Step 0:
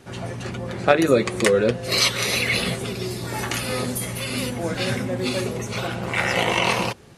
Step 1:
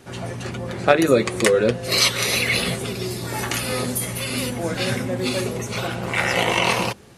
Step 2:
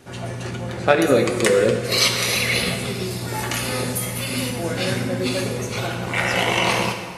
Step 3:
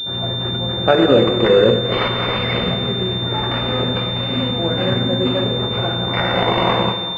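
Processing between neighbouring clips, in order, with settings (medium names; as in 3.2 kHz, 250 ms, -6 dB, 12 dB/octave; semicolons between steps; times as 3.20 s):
treble shelf 9.9 kHz +5 dB; hum notches 50/100/150/200 Hz; trim +1 dB
plate-style reverb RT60 1.6 s, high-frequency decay 0.85×, DRR 4 dB; trim -1 dB
loudness maximiser +5 dB; class-D stage that switches slowly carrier 3.6 kHz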